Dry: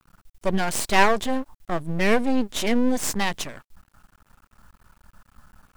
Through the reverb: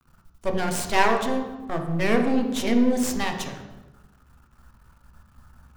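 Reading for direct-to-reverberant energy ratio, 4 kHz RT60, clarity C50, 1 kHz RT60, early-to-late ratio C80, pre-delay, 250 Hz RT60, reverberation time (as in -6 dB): 3.0 dB, 0.80 s, 6.5 dB, 1.0 s, 8.5 dB, 3 ms, 1.4 s, 1.1 s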